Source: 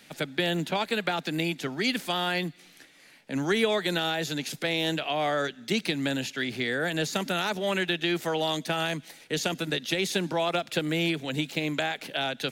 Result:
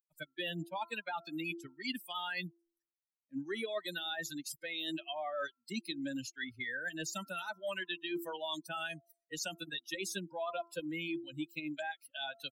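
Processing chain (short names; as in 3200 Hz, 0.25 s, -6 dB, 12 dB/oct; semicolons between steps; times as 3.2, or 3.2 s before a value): per-bin expansion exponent 3; low shelf 170 Hz -6.5 dB; comb 3.2 ms, depth 32%; de-hum 339.4 Hz, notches 4; reverse; compressor 5:1, threshold -41 dBFS, peak gain reduction 14 dB; reverse; gain +4.5 dB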